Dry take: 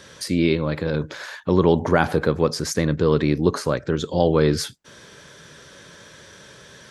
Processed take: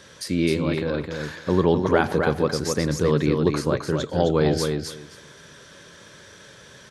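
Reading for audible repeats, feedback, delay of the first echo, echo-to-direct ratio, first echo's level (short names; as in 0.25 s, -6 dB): 2, 16%, 0.262 s, -5.0 dB, -5.0 dB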